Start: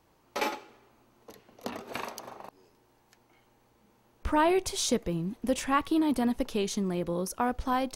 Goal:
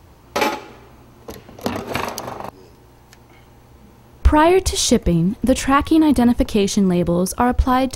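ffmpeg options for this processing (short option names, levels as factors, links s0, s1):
-filter_complex "[0:a]equalizer=f=72:w=0.72:g=13.5,asplit=2[s0][s1];[s1]acompressor=threshold=0.0158:ratio=6,volume=0.891[s2];[s0][s2]amix=inputs=2:normalize=0,volume=2.82"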